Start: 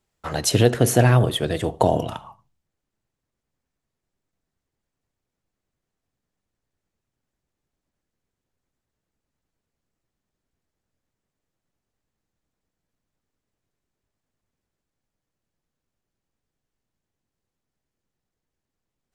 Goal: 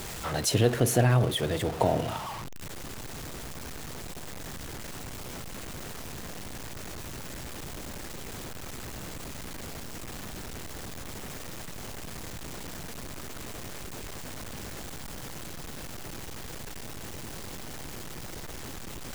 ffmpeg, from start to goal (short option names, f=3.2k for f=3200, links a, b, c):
-af "aeval=exprs='val(0)+0.5*0.0596*sgn(val(0))':c=same,volume=-7.5dB"